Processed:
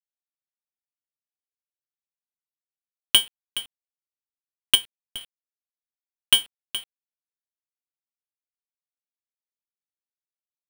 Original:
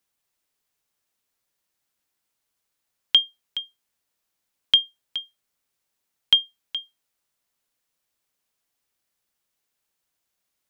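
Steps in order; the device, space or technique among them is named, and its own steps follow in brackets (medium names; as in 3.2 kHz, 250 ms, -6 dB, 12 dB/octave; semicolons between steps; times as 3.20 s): 4.75–5.21 s: tilt EQ -3.5 dB/octave; early 8-bit sampler (sample-rate reducer 6.2 kHz, jitter 0%; bit crusher 8-bit)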